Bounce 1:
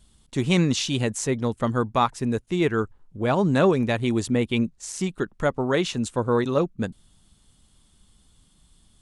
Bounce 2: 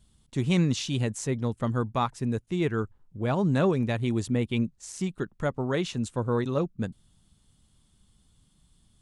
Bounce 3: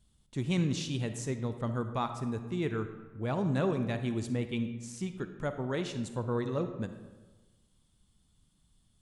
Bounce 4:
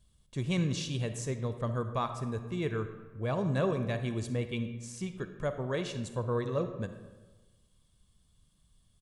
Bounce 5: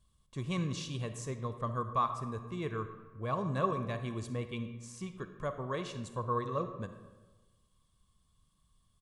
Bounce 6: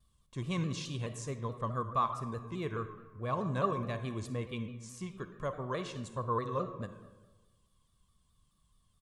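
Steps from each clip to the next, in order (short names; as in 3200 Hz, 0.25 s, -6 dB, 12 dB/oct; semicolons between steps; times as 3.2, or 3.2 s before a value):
bell 120 Hz +6 dB 1.7 oct; gain -6.5 dB
digital reverb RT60 1.3 s, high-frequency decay 0.6×, pre-delay 10 ms, DRR 8.5 dB; gain -6 dB
comb 1.8 ms, depth 37%
bell 1100 Hz +14.5 dB 0.21 oct; gain -4.5 dB
shaped vibrato saw down 4.7 Hz, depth 100 cents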